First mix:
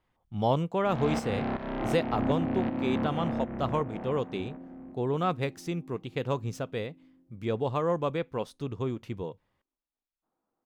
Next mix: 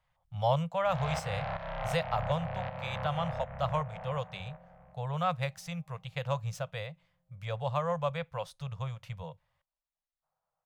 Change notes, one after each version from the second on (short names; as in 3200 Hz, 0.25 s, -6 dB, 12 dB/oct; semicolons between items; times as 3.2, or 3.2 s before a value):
master: add Chebyshev band-stop 160–560 Hz, order 3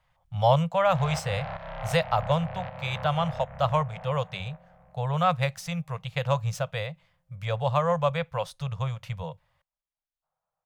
speech +7.0 dB